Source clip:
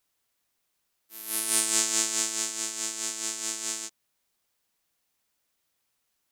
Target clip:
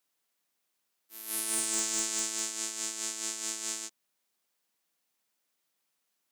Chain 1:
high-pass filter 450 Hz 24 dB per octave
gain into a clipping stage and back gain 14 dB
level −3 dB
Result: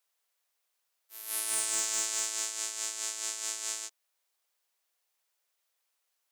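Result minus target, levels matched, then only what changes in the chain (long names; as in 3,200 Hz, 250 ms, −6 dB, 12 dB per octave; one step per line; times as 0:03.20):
125 Hz band −9.5 dB
change: high-pass filter 150 Hz 24 dB per octave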